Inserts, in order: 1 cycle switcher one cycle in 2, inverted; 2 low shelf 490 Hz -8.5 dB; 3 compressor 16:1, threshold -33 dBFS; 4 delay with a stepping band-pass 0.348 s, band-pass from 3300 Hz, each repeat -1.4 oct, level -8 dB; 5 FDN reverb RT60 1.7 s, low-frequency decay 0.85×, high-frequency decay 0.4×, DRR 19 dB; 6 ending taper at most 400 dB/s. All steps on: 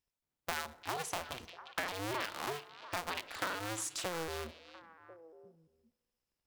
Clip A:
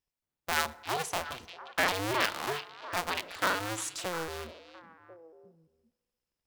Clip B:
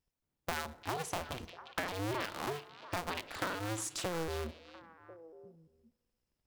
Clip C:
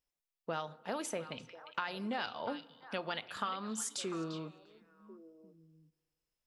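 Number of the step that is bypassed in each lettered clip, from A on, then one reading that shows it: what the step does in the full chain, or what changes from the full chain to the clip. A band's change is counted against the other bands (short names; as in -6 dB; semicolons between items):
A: 3, mean gain reduction 4.5 dB; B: 2, 125 Hz band +6.5 dB; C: 1, 250 Hz band +6.5 dB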